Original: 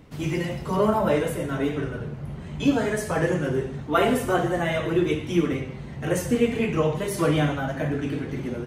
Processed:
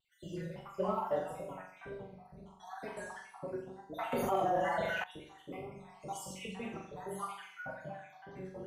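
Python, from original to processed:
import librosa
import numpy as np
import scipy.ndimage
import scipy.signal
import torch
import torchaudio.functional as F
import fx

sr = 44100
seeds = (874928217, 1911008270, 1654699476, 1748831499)

p1 = fx.spec_dropout(x, sr, seeds[0], share_pct=68)
p2 = fx.peak_eq(p1, sr, hz=800.0, db=14.0, octaves=1.1)
p3 = fx.comb_fb(p2, sr, f0_hz=190.0, decay_s=0.28, harmonics='all', damping=0.0, mix_pct=90)
p4 = 10.0 ** (-27.5 / 20.0) * np.tanh(p3 / 10.0 ** (-27.5 / 20.0))
p5 = p3 + (p4 * librosa.db_to_amplitude(-8.5))
p6 = fx.peak_eq(p5, sr, hz=6300.0, db=10.5, octaves=2.1, at=(5.72, 6.56))
p7 = fx.notch_comb(p6, sr, f0_hz=440.0, at=(7.57, 8.34))
p8 = fx.wow_flutter(p7, sr, seeds[1], rate_hz=2.1, depth_cents=69.0)
p9 = p8 + fx.room_flutter(p8, sr, wall_m=7.3, rt60_s=0.56, dry=0)
p10 = fx.env_flatten(p9, sr, amount_pct=70, at=(4.12, 5.04))
y = p10 * librosa.db_to_amplitude(-8.5)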